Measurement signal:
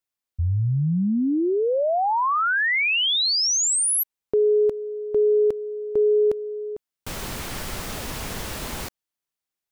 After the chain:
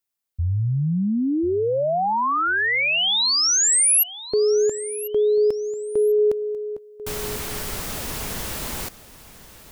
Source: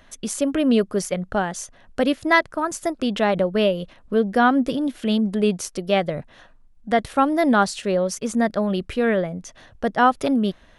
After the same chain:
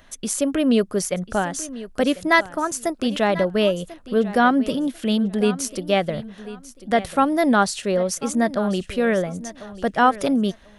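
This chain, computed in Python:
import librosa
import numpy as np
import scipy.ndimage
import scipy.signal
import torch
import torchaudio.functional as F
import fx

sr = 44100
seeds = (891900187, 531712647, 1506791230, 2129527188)

p1 = fx.high_shelf(x, sr, hz=7400.0, db=7.0)
y = p1 + fx.echo_feedback(p1, sr, ms=1043, feedback_pct=21, wet_db=-16, dry=0)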